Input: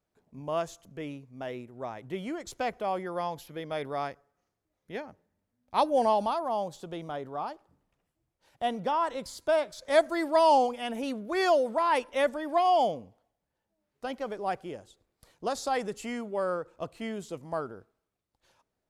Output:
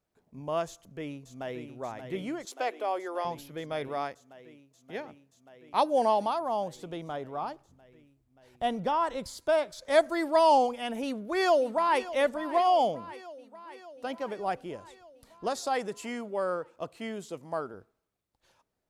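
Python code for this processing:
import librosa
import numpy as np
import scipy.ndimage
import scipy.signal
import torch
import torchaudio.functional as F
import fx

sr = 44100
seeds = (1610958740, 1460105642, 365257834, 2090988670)

y = fx.echo_throw(x, sr, start_s=0.67, length_s=1.02, ms=580, feedback_pct=85, wet_db=-8.5)
y = fx.steep_highpass(y, sr, hz=300.0, slope=36, at=(2.45, 3.25))
y = fx.highpass(y, sr, hz=160.0, slope=6, at=(3.88, 6.41))
y = fx.low_shelf(y, sr, hz=110.0, db=9.0, at=(7.42, 9.27))
y = fx.echo_throw(y, sr, start_s=11.01, length_s=1.09, ms=590, feedback_pct=70, wet_db=-15.5)
y = fx.highpass(y, sr, hz=86.0, slope=12, at=(12.73, 14.4))
y = fx.highpass(y, sr, hz=170.0, slope=6, at=(15.52, 17.74))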